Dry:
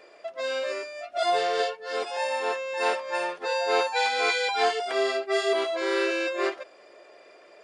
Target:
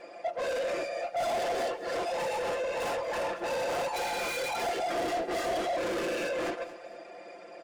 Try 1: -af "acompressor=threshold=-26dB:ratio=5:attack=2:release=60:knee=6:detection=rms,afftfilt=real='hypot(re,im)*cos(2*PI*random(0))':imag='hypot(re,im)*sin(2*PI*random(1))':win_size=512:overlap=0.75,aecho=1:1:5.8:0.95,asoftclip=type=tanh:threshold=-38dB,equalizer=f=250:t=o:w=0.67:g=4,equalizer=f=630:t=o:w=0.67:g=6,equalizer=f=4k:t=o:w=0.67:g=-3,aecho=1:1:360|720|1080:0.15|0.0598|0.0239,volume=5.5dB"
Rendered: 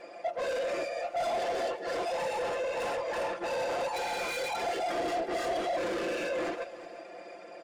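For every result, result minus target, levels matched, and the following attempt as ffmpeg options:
echo 0.133 s late; compressor: peak gain reduction +9 dB
-af "acompressor=threshold=-26dB:ratio=5:attack=2:release=60:knee=6:detection=rms,afftfilt=real='hypot(re,im)*cos(2*PI*random(0))':imag='hypot(re,im)*sin(2*PI*random(1))':win_size=512:overlap=0.75,aecho=1:1:5.8:0.95,asoftclip=type=tanh:threshold=-38dB,equalizer=f=250:t=o:w=0.67:g=4,equalizer=f=630:t=o:w=0.67:g=6,equalizer=f=4k:t=o:w=0.67:g=-3,aecho=1:1:227|454|681:0.15|0.0598|0.0239,volume=5.5dB"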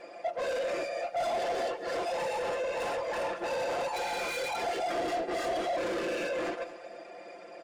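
compressor: peak gain reduction +9 dB
-af "afftfilt=real='hypot(re,im)*cos(2*PI*random(0))':imag='hypot(re,im)*sin(2*PI*random(1))':win_size=512:overlap=0.75,aecho=1:1:5.8:0.95,asoftclip=type=tanh:threshold=-38dB,equalizer=f=250:t=o:w=0.67:g=4,equalizer=f=630:t=o:w=0.67:g=6,equalizer=f=4k:t=o:w=0.67:g=-3,aecho=1:1:227|454|681:0.15|0.0598|0.0239,volume=5.5dB"

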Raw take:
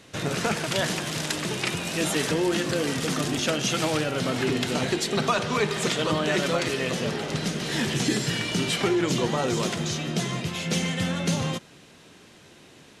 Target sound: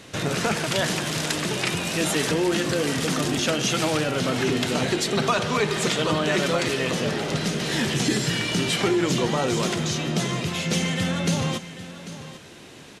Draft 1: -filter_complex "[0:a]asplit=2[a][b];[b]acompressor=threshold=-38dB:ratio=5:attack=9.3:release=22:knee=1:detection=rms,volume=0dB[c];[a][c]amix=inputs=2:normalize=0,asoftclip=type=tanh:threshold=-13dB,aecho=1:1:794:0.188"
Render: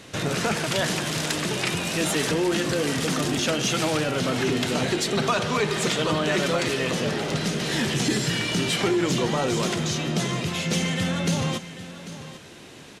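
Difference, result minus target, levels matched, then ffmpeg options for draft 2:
soft clip: distortion +19 dB
-filter_complex "[0:a]asplit=2[a][b];[b]acompressor=threshold=-38dB:ratio=5:attack=9.3:release=22:knee=1:detection=rms,volume=0dB[c];[a][c]amix=inputs=2:normalize=0,asoftclip=type=tanh:threshold=-2.5dB,aecho=1:1:794:0.188"

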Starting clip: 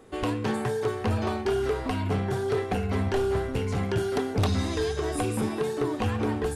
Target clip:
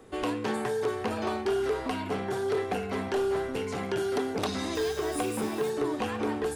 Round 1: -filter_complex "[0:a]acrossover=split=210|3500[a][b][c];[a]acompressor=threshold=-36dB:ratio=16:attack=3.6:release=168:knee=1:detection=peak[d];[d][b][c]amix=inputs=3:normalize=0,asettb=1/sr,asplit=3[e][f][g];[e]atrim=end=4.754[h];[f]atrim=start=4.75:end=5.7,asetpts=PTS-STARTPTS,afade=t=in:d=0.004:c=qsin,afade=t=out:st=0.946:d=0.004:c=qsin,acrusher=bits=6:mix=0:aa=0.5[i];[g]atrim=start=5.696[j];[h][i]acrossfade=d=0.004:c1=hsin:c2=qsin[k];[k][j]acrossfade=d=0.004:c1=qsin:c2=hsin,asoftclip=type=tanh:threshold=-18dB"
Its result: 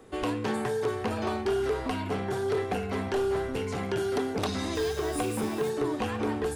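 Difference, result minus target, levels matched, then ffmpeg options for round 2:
compressor: peak gain reduction -6.5 dB
-filter_complex "[0:a]acrossover=split=210|3500[a][b][c];[a]acompressor=threshold=-43dB:ratio=16:attack=3.6:release=168:knee=1:detection=peak[d];[d][b][c]amix=inputs=3:normalize=0,asettb=1/sr,asplit=3[e][f][g];[e]atrim=end=4.754[h];[f]atrim=start=4.75:end=5.7,asetpts=PTS-STARTPTS,afade=t=in:d=0.004:c=qsin,afade=t=out:st=0.946:d=0.004:c=qsin,acrusher=bits=6:mix=0:aa=0.5[i];[g]atrim=start=5.696[j];[h][i]acrossfade=d=0.004:c1=hsin:c2=qsin[k];[k][j]acrossfade=d=0.004:c1=qsin:c2=hsin,asoftclip=type=tanh:threshold=-18dB"

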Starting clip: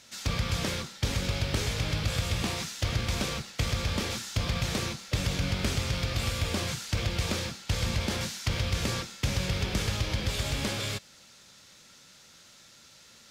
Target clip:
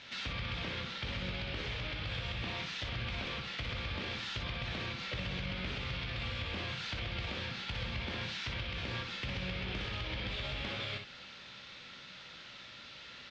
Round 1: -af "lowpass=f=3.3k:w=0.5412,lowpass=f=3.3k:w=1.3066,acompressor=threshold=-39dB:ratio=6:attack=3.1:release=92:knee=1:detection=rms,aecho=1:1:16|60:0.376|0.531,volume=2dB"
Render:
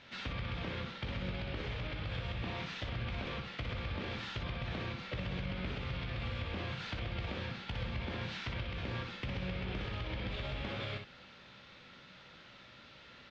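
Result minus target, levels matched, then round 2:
4000 Hz band -4.5 dB
-af "lowpass=f=3.3k:w=0.5412,lowpass=f=3.3k:w=1.3066,highshelf=f=2.1k:g=11,acompressor=threshold=-39dB:ratio=6:attack=3.1:release=92:knee=1:detection=rms,aecho=1:1:16|60:0.376|0.531,volume=2dB"

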